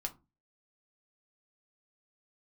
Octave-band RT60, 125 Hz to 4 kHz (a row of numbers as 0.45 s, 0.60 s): 0.40 s, 0.40 s, 0.30 s, 0.25 s, 0.20 s, 0.15 s